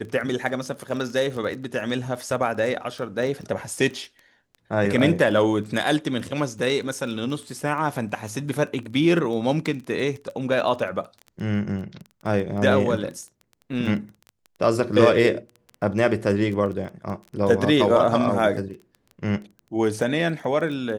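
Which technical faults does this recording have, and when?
crackle 13 per s -31 dBFS

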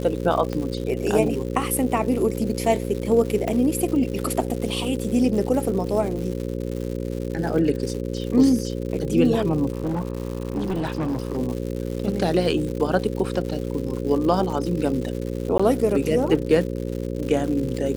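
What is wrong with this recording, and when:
buzz 60 Hz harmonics 9 -28 dBFS
crackle 200 per s -30 dBFS
0.53 s: pop -15 dBFS
3.48 s: pop -13 dBFS
9.72–11.37 s: clipped -21 dBFS
15.58–15.60 s: dropout 15 ms

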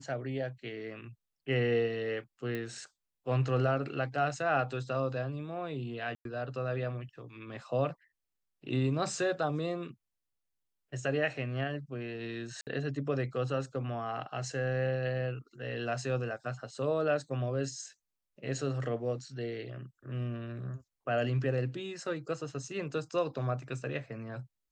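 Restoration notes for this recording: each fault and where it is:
2.55 s: pop -24 dBFS
6.15–6.25 s: dropout 102 ms
12.61–12.67 s: dropout 58 ms

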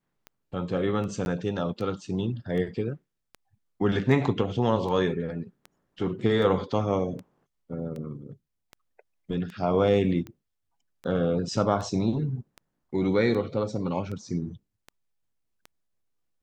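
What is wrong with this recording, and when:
tick 78 rpm -26 dBFS
1.25–1.26 s: dropout 11 ms

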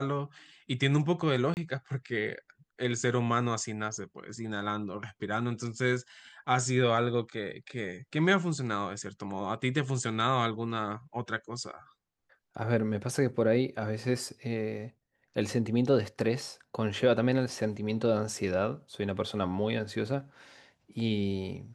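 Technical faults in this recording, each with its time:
1.54–1.57 s: dropout 29 ms

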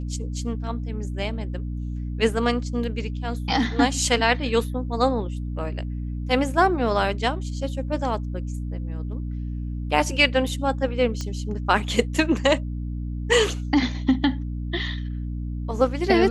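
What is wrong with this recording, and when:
hum 60 Hz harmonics 5 -29 dBFS
11.21 s: pop -17 dBFS

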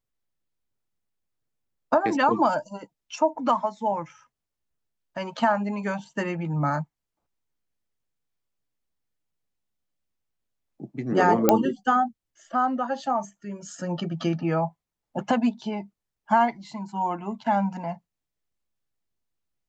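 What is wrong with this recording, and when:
11.49 s: pop -3 dBFS

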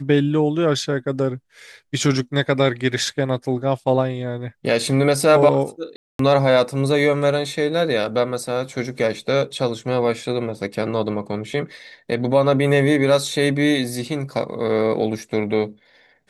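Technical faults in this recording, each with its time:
5.96–6.19 s: dropout 233 ms

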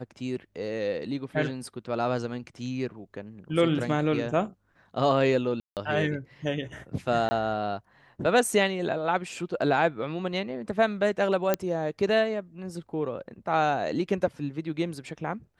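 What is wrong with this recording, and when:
5.60–5.77 s: dropout 168 ms
7.29–7.31 s: dropout 20 ms
11.54 s: pop -9 dBFS

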